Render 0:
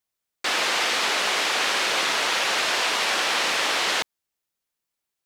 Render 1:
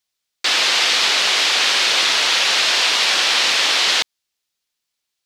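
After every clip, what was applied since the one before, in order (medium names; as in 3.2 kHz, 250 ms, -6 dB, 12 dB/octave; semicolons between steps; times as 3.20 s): peaking EQ 4.2 kHz +10.5 dB 2 oct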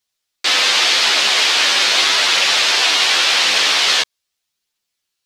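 chorus voices 2, 0.42 Hz, delay 12 ms, depth 2 ms; trim +5 dB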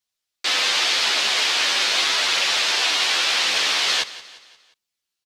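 feedback delay 176 ms, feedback 47%, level -17 dB; trim -6 dB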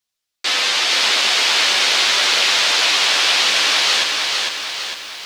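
bit-crushed delay 454 ms, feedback 55%, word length 8-bit, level -3 dB; trim +2.5 dB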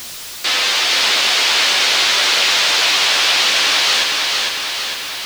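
jump at every zero crossing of -24 dBFS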